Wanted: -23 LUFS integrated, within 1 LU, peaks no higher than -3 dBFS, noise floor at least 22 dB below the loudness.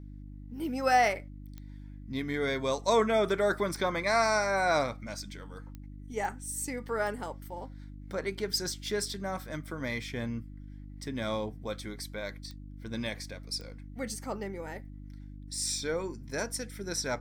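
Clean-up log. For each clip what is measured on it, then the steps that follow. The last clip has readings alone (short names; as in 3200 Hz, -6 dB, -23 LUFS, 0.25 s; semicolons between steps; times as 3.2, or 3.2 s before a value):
clicks 7; hum 50 Hz; harmonics up to 300 Hz; hum level -42 dBFS; loudness -32.0 LUFS; peak -13.0 dBFS; loudness target -23.0 LUFS
-> de-click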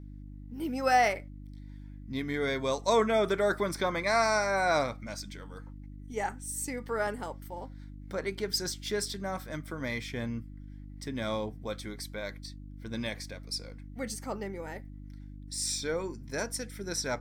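clicks 0; hum 50 Hz; harmonics up to 300 Hz; hum level -42 dBFS
-> de-hum 50 Hz, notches 6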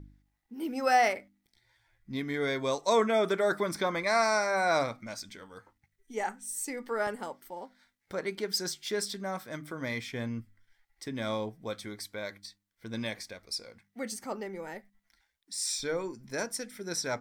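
hum none; loudness -32.0 LUFS; peak -13.0 dBFS; loudness target -23.0 LUFS
-> gain +9 dB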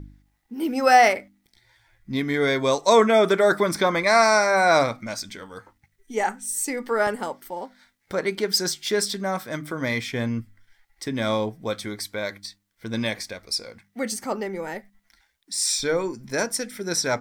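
loudness -23.0 LUFS; peak -4.0 dBFS; noise floor -70 dBFS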